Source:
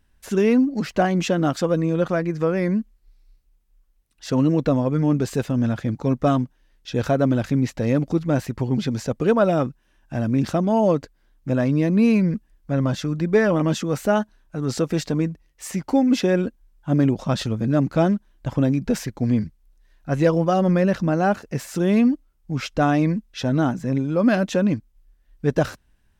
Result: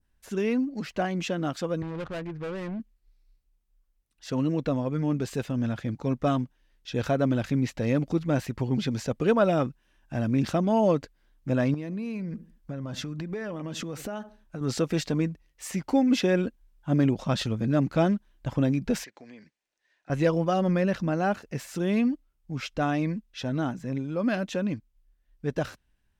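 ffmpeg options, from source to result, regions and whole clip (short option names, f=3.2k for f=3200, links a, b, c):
-filter_complex "[0:a]asettb=1/sr,asplit=3[a][b][c];[a]atrim=end=1.824[d];[b]atrim=start=1.82:end=2.8,asetpts=PTS-STARTPTS,afade=t=in:d=0.004:c=qsin,afade=t=out:st=0.976:d=0.004:c=qsin,lowshelf=f=130:t=q:w=1.5:g=9,asoftclip=type=hard:threshold=-22dB,adynamicsmooth=sensitivity=5:basefreq=940[e];[c]atrim=start=2.796[f];[d][e]acrossfade=d=0.004:c1=hsin:c2=qsin[g];[g][f]acrossfade=d=0.004:c1=qsin:c2=hsin,asettb=1/sr,asplit=3[h][i][j];[h]atrim=end=11.744[k];[i]atrim=start=11.74:end=14.61,asetpts=PTS-STARTPTS,afade=t=in:d=0.004:c=qsin,afade=t=out:st=2.866:d=0.004:c=qsin,asplit=2[l][m];[m]adelay=73,lowpass=f=820:p=1,volume=-20dB,asplit=2[n][o];[o]adelay=73,lowpass=f=820:p=1,volume=0.32,asplit=2[p][q];[q]adelay=73,lowpass=f=820:p=1,volume=0.32[r];[l][n][p][r]amix=inputs=4:normalize=0,atrim=end_sample=126567,acompressor=threshold=-26dB:ratio=8:attack=3.2:release=140:knee=1:detection=peak[s];[j]atrim=start=14.606[t];[k][s]acrossfade=d=0.004:c1=hsin:c2=qsin[u];[u][t]acrossfade=d=0.004:c1=qsin:c2=hsin,asettb=1/sr,asplit=3[v][w][x];[v]atrim=end=19.044[y];[w]atrim=start=19.04:end=20.1,asetpts=PTS-STARTPTS,afade=t=in:d=0.004:c=qsin,afade=t=out:st=1.056:d=0.004:c=qsin,highpass=470,equalizer=f=1.2k:t=q:w=4:g=-4,equalizer=f=1.8k:t=q:w=4:g=5,equalizer=f=2.5k:t=q:w=4:g=4,lowpass=f=8.1k:w=0.5412,lowpass=f=8.1k:w=1.3066,acompressor=threshold=-42dB:ratio=3:attack=3.2:release=140:knee=1:detection=peak[z];[x]atrim=start=20.096[aa];[y][z]acrossfade=d=0.004:c1=hsin:c2=qsin[ab];[ab][aa]acrossfade=d=0.004:c1=qsin:c2=hsin,adynamicequalizer=threshold=0.00794:dfrequency=2800:dqfactor=0.99:tfrequency=2800:tqfactor=0.99:attack=5:release=100:ratio=0.375:range=2:mode=boostabove:tftype=bell,dynaudnorm=f=980:g=13:m=11.5dB,volume=-9dB"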